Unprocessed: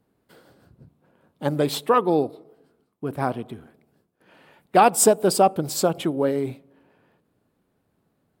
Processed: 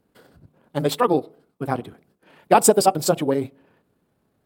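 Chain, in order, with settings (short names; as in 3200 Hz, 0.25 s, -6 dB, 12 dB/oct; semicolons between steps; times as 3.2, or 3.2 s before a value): granular stretch 0.53×, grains 64 ms; gain +3 dB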